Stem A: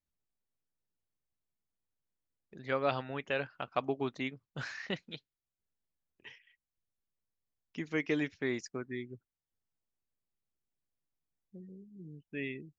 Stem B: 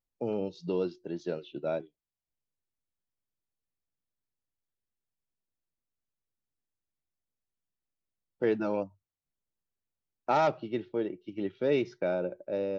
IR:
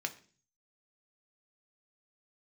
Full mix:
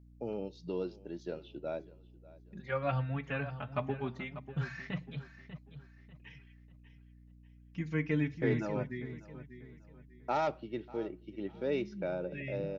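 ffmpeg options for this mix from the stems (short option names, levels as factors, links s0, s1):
-filter_complex "[0:a]acrossover=split=2800[s0][s1];[s1]acompressor=threshold=0.00112:ratio=4:attack=1:release=60[s2];[s0][s2]amix=inputs=2:normalize=0,lowshelf=f=230:t=q:w=1.5:g=11,asplit=2[s3][s4];[s4]adelay=4,afreqshift=-0.62[s5];[s3][s5]amix=inputs=2:normalize=1,volume=0.708,asplit=3[s6][s7][s8];[s7]volume=0.631[s9];[s8]volume=0.376[s10];[1:a]volume=0.447,asplit=3[s11][s12][s13];[s12]volume=0.15[s14];[s13]volume=0.106[s15];[2:a]atrim=start_sample=2205[s16];[s9][s14]amix=inputs=2:normalize=0[s17];[s17][s16]afir=irnorm=-1:irlink=0[s18];[s10][s15]amix=inputs=2:normalize=0,aecho=0:1:593|1186|1779|2372|2965:1|0.33|0.109|0.0359|0.0119[s19];[s6][s11][s18][s19]amix=inputs=4:normalize=0,aeval=exprs='val(0)+0.00158*(sin(2*PI*60*n/s)+sin(2*PI*2*60*n/s)/2+sin(2*PI*3*60*n/s)/3+sin(2*PI*4*60*n/s)/4+sin(2*PI*5*60*n/s)/5)':c=same"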